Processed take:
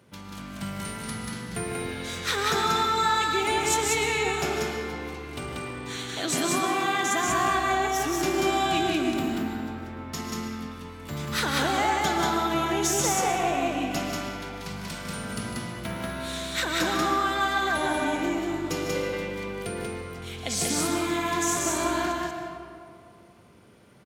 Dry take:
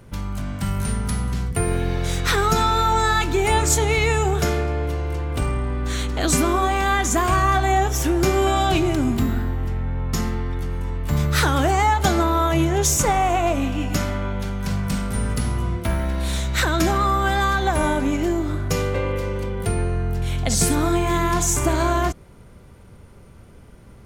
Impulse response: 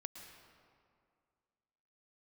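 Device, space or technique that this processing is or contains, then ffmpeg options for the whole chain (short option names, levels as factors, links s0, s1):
stadium PA: -filter_complex "[0:a]highpass=160,equalizer=f=3500:t=o:w=1.5:g=4.5,aecho=1:1:151.6|186.6:0.282|0.794[s0];[1:a]atrim=start_sample=2205[s1];[s0][s1]afir=irnorm=-1:irlink=0,volume=0.668"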